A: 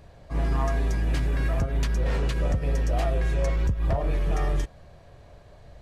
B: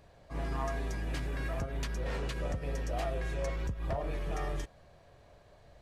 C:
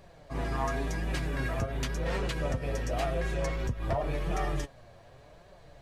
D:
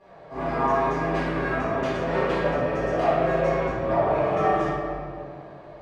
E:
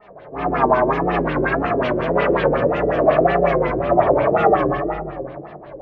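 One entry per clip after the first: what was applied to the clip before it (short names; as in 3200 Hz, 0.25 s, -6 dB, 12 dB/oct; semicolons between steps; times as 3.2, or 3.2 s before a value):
low shelf 210 Hz -6.5 dB; gain -5.5 dB
flange 0.91 Hz, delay 5.1 ms, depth 4.1 ms, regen +43%; gain +9 dB
band-pass 780 Hz, Q 0.66; reverb RT60 2.2 s, pre-delay 4 ms, DRR -15.5 dB; gain -3 dB
wow and flutter 130 cents; LFO low-pass sine 5.5 Hz 370–3400 Hz; gain +4 dB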